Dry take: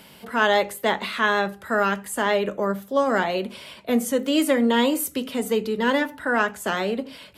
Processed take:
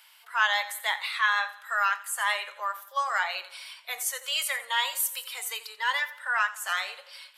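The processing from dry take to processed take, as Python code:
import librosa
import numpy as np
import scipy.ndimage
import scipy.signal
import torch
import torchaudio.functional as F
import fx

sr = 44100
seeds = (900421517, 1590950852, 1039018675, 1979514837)

p1 = scipy.signal.sosfilt(scipy.signal.cheby2(4, 60, 290.0, 'highpass', fs=sr, output='sos'), x)
p2 = fx.echo_feedback(p1, sr, ms=87, feedback_pct=52, wet_db=-13.5)
p3 = fx.rider(p2, sr, range_db=4, speed_s=0.5)
p4 = p2 + F.gain(torch.from_numpy(p3), -0.5).numpy()
p5 = fx.noise_reduce_blind(p4, sr, reduce_db=7)
y = F.gain(torch.from_numpy(p5), -5.5).numpy()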